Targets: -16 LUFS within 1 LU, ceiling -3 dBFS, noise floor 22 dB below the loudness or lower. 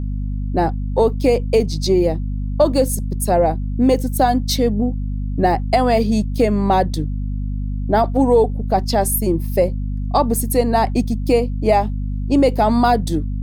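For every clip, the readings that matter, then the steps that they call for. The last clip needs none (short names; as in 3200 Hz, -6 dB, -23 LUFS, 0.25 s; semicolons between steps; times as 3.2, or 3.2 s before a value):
hum 50 Hz; harmonics up to 250 Hz; hum level -20 dBFS; loudness -18.0 LUFS; peak -3.5 dBFS; loudness target -16.0 LUFS
-> notches 50/100/150/200/250 Hz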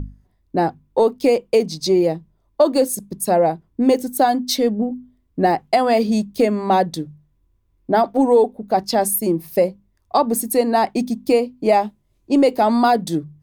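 hum none; loudness -18.5 LUFS; peak -4.0 dBFS; loudness target -16.0 LUFS
-> gain +2.5 dB; limiter -3 dBFS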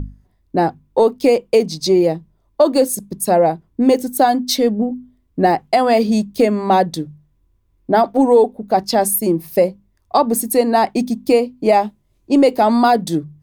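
loudness -16.0 LUFS; peak -3.0 dBFS; noise floor -61 dBFS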